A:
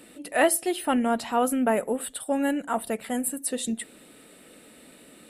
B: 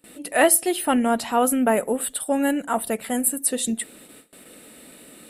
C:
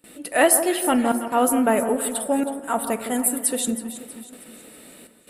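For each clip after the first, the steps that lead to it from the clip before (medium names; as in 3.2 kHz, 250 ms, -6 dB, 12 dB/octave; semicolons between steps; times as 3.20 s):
gate with hold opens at -41 dBFS; treble shelf 10 kHz +9 dB; trim +3.5 dB
trance gate "xxxxxxxxxxx.." 148 bpm -60 dB; echo whose repeats swap between lows and highs 160 ms, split 1.4 kHz, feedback 68%, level -9.5 dB; on a send at -12 dB: reverberation RT60 1.9 s, pre-delay 7 ms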